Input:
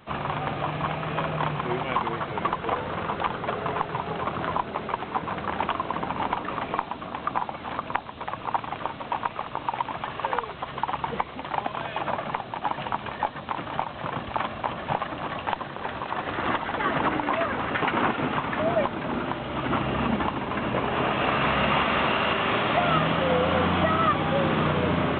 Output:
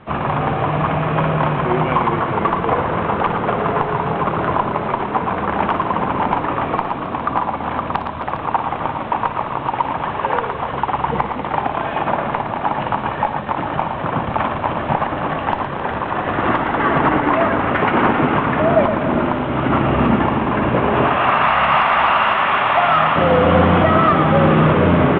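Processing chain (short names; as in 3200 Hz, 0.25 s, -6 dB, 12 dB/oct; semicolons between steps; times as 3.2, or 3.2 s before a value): 21.05–23.16 resonant low shelf 590 Hz -11.5 dB, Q 1.5; sine folder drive 7 dB, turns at -5 dBFS; air absorption 450 m; tapped delay 51/58/114/266/340/406 ms -19.5/-12.5/-7.5/-12/-19/-11.5 dB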